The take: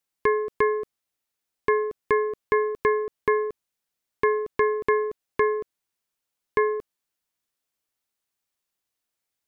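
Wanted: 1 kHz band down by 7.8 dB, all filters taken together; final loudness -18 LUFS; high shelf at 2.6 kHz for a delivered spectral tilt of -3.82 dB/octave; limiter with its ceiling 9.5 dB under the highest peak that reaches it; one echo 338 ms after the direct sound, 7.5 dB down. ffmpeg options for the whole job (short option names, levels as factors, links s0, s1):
-af "equalizer=f=1000:t=o:g=-8.5,highshelf=f=2600:g=3,alimiter=limit=0.0794:level=0:latency=1,aecho=1:1:338:0.422,volume=5.01"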